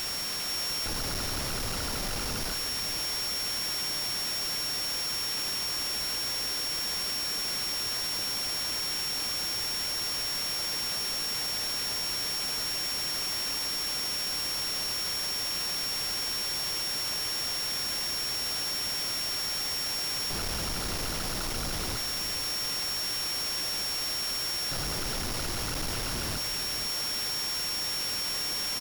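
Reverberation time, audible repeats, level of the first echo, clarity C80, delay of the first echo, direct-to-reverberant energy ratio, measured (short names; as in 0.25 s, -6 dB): none, 1, -11.0 dB, none, 0.482 s, none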